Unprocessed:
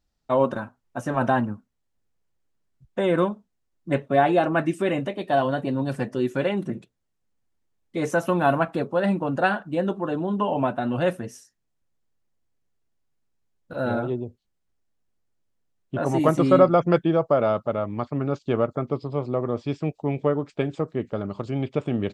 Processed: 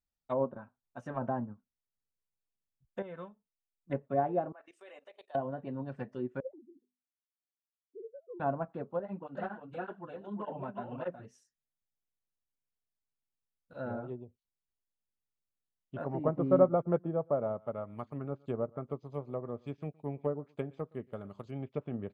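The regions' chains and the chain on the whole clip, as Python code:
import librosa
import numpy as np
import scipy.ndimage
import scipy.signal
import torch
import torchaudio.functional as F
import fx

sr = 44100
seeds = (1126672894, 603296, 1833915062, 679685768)

y = fx.chain(x, sr, fx.peak_eq(hz=320.0, db=-8.5, octaves=0.31),
    fx.comb_fb(f0_hz=440.0, decay_s=0.22, harmonics='all', damping=0.0, mix_pct=60), at=(3.02, 3.9))
y = fx.chain(y, sr, fx.highpass(hz=460.0, slope=24),
    fx.level_steps(step_db=17), at=(4.52, 5.35))
y = fx.chain(y, sr, fx.sine_speech(),
    fx.ladder_lowpass(hz=520.0, resonance_pct=35),
    fx.hum_notches(base_hz=50, count=5), at=(6.4, 8.4))
y = fx.chain(y, sr, fx.echo_single(ms=362, db=-5.0),
    fx.overload_stage(gain_db=13.5),
    fx.flanger_cancel(hz=1.7, depth_ms=7.3), at=(8.99, 11.25))
y = fx.chain(y, sr, fx.high_shelf(hz=4300.0, db=7.5),
    fx.echo_single(ms=117, db=-21.0),
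    fx.resample_bad(factor=4, down='filtered', up='hold'), at=(16.0, 21.51))
y = fx.env_lowpass_down(y, sr, base_hz=830.0, full_db=-19.0)
y = fx.peak_eq(y, sr, hz=320.0, db=-6.0, octaves=0.22)
y = fx.upward_expand(y, sr, threshold_db=-36.0, expansion=1.5)
y = y * 10.0 ** (-6.0 / 20.0)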